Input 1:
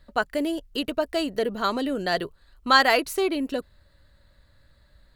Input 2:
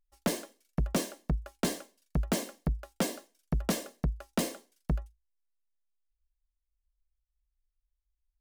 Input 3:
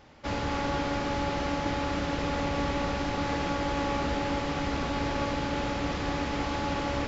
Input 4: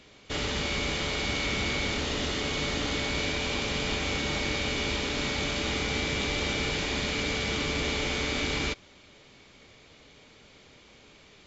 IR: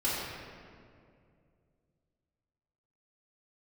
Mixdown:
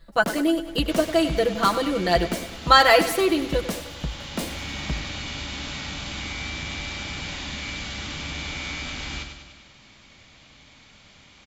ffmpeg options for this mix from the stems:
-filter_complex "[0:a]aecho=1:1:6:0.9,volume=1.12,asplit=3[s0][s1][s2];[s1]volume=0.224[s3];[1:a]volume=1,asplit=2[s4][s5];[s5]volume=0.158[s6];[2:a]adelay=400,volume=0.1[s7];[3:a]equalizer=f=430:t=o:w=0.65:g=-13,acompressor=threshold=0.0126:ratio=2,adelay=500,volume=1.41,asplit=2[s8][s9];[s9]volume=0.447[s10];[s2]apad=whole_len=527466[s11];[s8][s11]sidechaincompress=threshold=0.0141:ratio=8:attack=16:release=910[s12];[s3][s6][s10]amix=inputs=3:normalize=0,aecho=0:1:99|198|297|396|495|594|693|792|891:1|0.57|0.325|0.185|0.106|0.0602|0.0343|0.0195|0.0111[s13];[s0][s4][s7][s12][s13]amix=inputs=5:normalize=0"

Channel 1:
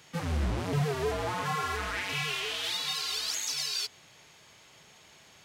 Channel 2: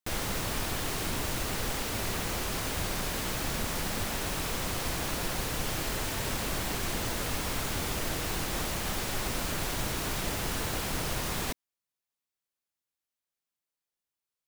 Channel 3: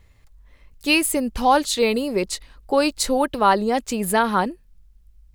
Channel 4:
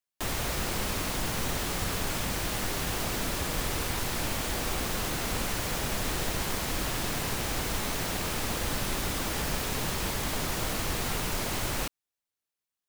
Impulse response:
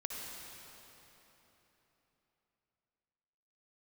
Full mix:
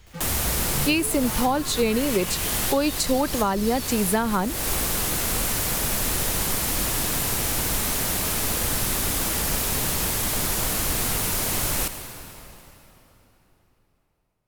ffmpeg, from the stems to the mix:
-filter_complex "[0:a]volume=0.473,asplit=2[s0][s1];[s1]volume=0.596[s2];[1:a]asoftclip=type=tanh:threshold=0.01,volume=0.188,asplit=2[s3][s4];[s4]volume=0.596[s5];[2:a]volume=1.19,asplit=2[s6][s7];[3:a]equalizer=f=12000:w=0.57:g=11,volume=1.12,asplit=2[s8][s9];[s9]volume=0.531[s10];[s7]apad=whole_len=568157[s11];[s8][s11]sidechaincompress=threshold=0.0398:ratio=8:attack=16:release=277[s12];[4:a]atrim=start_sample=2205[s13];[s2][s5][s10]amix=inputs=3:normalize=0[s14];[s14][s13]afir=irnorm=-1:irlink=0[s15];[s0][s3][s6][s12][s15]amix=inputs=5:normalize=0,acrossover=split=280[s16][s17];[s17]acompressor=threshold=0.0891:ratio=6[s18];[s16][s18]amix=inputs=2:normalize=0"

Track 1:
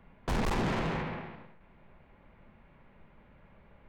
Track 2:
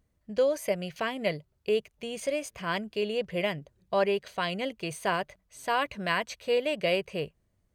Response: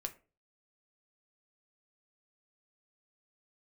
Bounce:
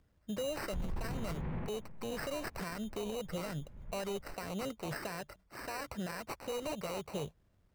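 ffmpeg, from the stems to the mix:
-filter_complex "[0:a]aemphasis=mode=reproduction:type=riaa,adelay=450,volume=0.75[s0];[1:a]acrossover=split=180|3000[s1][s2][s3];[s2]acompressor=threshold=0.0158:ratio=3[s4];[s1][s4][s3]amix=inputs=3:normalize=0,acrusher=samples=13:mix=1:aa=0.000001,volume=1.26,asplit=2[s5][s6];[s6]apad=whole_len=191327[s7];[s0][s7]sidechaincompress=threshold=0.00891:ratio=4:attack=29:release=411[s8];[s8][s5]amix=inputs=2:normalize=0,alimiter=level_in=2.11:limit=0.0631:level=0:latency=1:release=48,volume=0.473"

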